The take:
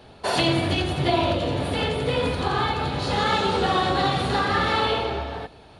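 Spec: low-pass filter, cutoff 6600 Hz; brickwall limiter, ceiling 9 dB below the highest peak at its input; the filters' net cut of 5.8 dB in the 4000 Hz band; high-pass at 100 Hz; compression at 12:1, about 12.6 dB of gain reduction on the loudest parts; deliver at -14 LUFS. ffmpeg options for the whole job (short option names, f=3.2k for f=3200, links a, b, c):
-af "highpass=100,lowpass=6.6k,equalizer=f=4k:t=o:g=-7,acompressor=threshold=-30dB:ratio=12,volume=24.5dB,alimiter=limit=-5.5dB:level=0:latency=1"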